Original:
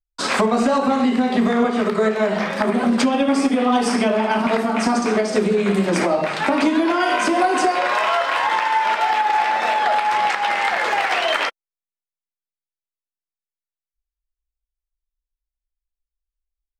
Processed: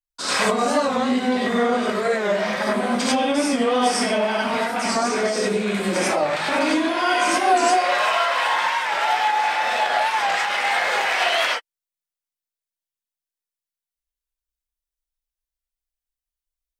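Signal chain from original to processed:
spectral tilt +1.5 dB per octave
reverb whose tail is shaped and stops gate 120 ms rising, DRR −6 dB
wow of a warped record 45 rpm, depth 100 cents
level −8 dB

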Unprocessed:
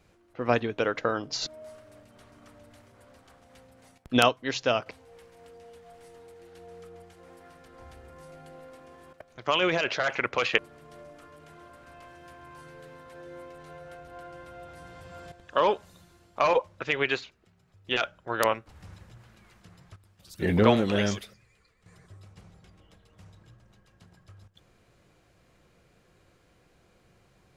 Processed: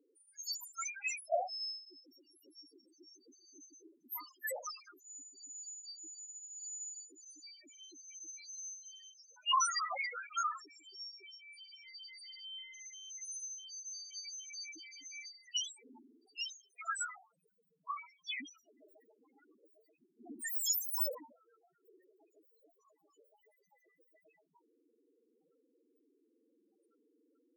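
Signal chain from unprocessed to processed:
frequency axis turned over on the octave scale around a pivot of 1,800 Hz
spectral peaks only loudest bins 2
every ending faded ahead of time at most 140 dB per second
level +6.5 dB

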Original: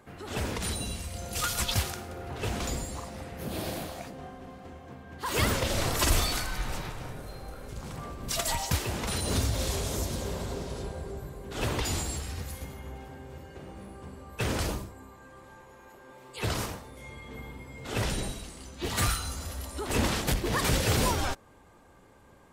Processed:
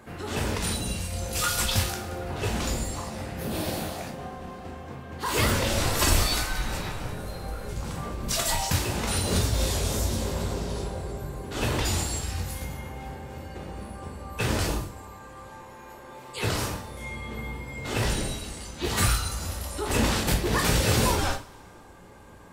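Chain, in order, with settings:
in parallel at −1 dB: downward compressor, threshold −40 dBFS, peak gain reduction 19.5 dB
0:17.85–0:18.37: on the sum: log-companded quantiser 8 bits
convolution reverb, pre-delay 12 ms, DRR 2.5 dB

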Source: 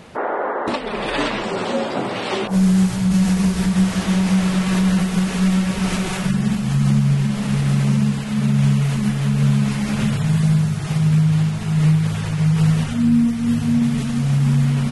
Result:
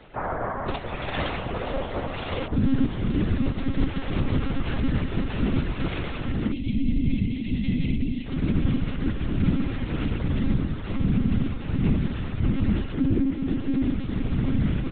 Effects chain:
time-frequency box erased 0:06.52–0:08.26, 250–1,900 Hz
random phases in short frames
one-pitch LPC vocoder at 8 kHz 270 Hz
level −6.5 dB

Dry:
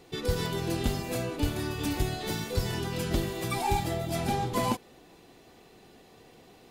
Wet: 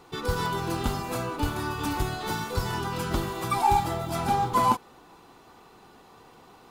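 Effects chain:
floating-point word with a short mantissa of 4 bits
flat-topped bell 1,100 Hz +10.5 dB 1 octave

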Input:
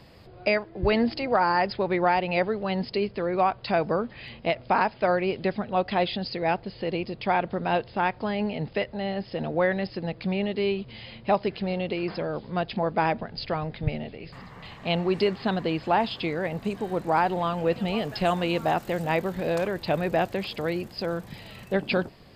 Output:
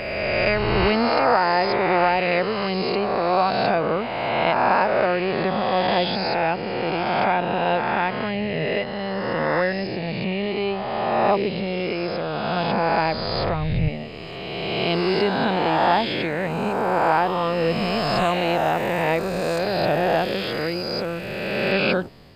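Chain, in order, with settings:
peak hold with a rise ahead of every peak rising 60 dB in 2.40 s

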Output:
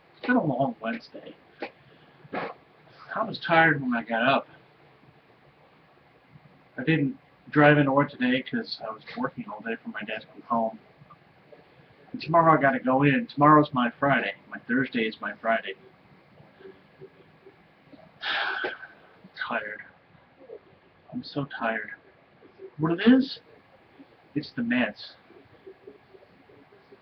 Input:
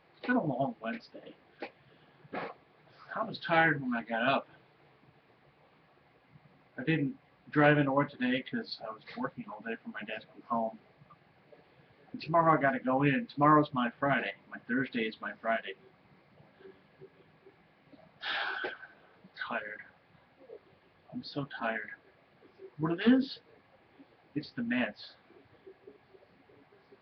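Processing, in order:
0:19.72–0:22.87: high-frequency loss of the air 92 metres
level +6.5 dB

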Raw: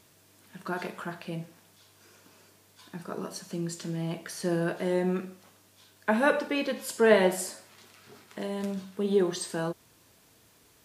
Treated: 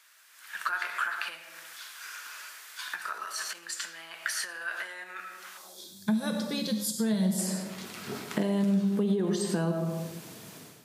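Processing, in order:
automatic gain control gain up to 13 dB
0:05.58–0:07.39: gain on a spectral selection 230–3,200 Hz −17 dB
comb and all-pass reverb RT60 0.84 s, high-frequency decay 0.3×, pre-delay 55 ms, DRR 8.5 dB
brickwall limiter −11.5 dBFS, peak gain reduction 9 dB
downward compressor 6 to 1, threshold −29 dBFS, peak gain reduction 13 dB
0:03.25–0:03.71: transient designer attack −8 dB, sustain +8 dB
high-pass filter sweep 1,500 Hz → 160 Hz, 0:05.52–0:06.03

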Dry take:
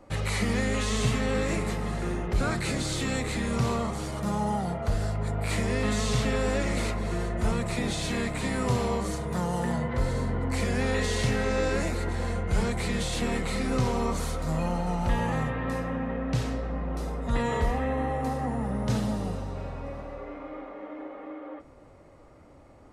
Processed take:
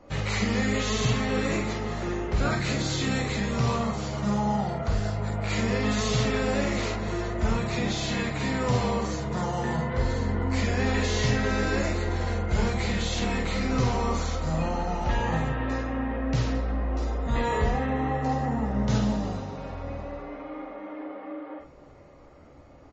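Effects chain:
ambience of single reflections 14 ms −6 dB, 49 ms −3.5 dB
downsampling to 16,000 Hz
MP3 32 kbit/s 32,000 Hz

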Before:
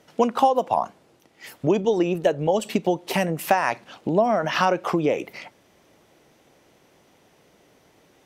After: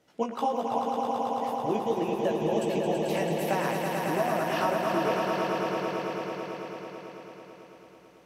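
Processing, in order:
chorus effect 1.4 Hz, delay 15 ms, depth 3.5 ms
echo that builds up and dies away 110 ms, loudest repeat 5, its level −5.5 dB
level −7 dB

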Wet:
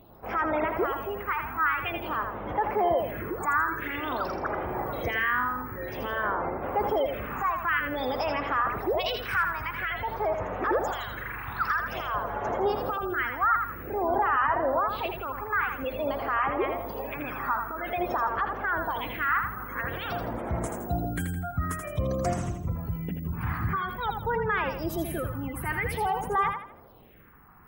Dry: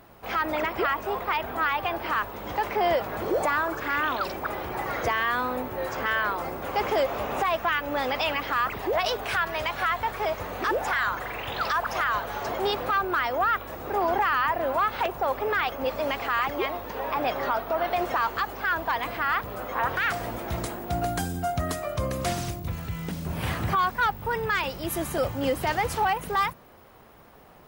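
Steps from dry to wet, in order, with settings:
gate on every frequency bin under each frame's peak −25 dB strong
all-pass phaser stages 4, 0.5 Hz, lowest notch 530–4,600 Hz
on a send: feedback echo with a high-pass in the loop 82 ms, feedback 36%, high-pass 420 Hz, level −5.5 dB

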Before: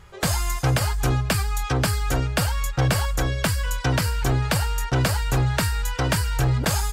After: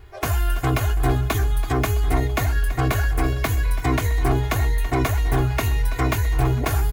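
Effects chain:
parametric band 4,500 Hz −10 dB 2.7 octaves
comb filter 2.8 ms, depth 91%
formants moved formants +6 semitones
repeating echo 331 ms, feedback 59%, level −15 dB

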